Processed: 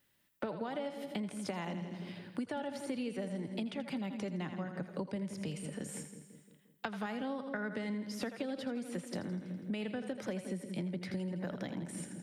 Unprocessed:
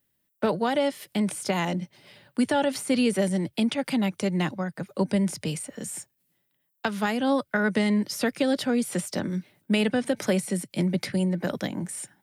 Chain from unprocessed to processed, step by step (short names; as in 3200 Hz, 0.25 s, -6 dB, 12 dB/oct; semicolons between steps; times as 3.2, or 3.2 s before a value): LPF 3200 Hz 6 dB/oct; split-band echo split 460 Hz, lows 0.175 s, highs 82 ms, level -10 dB; compressor 5:1, threshold -36 dBFS, peak gain reduction 15.5 dB; mismatched tape noise reduction encoder only; gain -1 dB